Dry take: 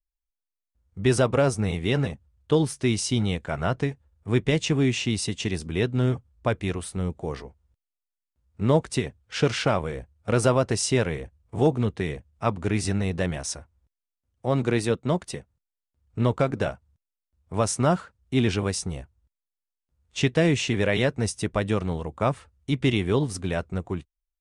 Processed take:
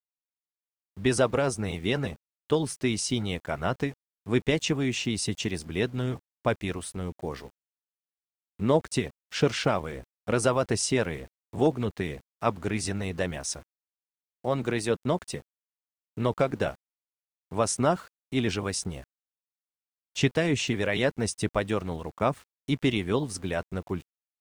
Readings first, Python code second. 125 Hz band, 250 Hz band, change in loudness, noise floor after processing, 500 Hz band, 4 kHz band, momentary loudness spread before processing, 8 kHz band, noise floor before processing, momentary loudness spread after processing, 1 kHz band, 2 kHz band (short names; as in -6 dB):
-6.0 dB, -3.0 dB, -3.0 dB, under -85 dBFS, -2.5 dB, -1.5 dB, 11 LU, -1.0 dB, under -85 dBFS, 11 LU, -1.5 dB, -1.5 dB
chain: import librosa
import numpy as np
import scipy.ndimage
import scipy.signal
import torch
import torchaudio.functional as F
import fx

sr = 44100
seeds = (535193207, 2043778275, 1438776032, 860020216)

y = fx.hpss(x, sr, part='percussive', gain_db=7)
y = np.where(np.abs(y) >= 10.0 ** (-42.0 / 20.0), y, 0.0)
y = y * 10.0 ** (-7.5 / 20.0)